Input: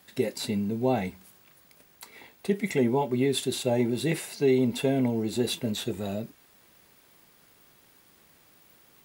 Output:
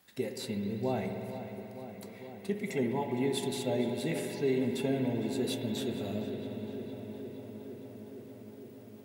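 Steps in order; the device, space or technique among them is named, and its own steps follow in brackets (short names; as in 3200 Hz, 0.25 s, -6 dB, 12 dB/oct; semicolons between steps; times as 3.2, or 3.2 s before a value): dub delay into a spring reverb (darkening echo 0.461 s, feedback 81%, low-pass 3500 Hz, level -12 dB; spring tank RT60 3.9 s, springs 60 ms, chirp 80 ms, DRR 4 dB); gain -7.5 dB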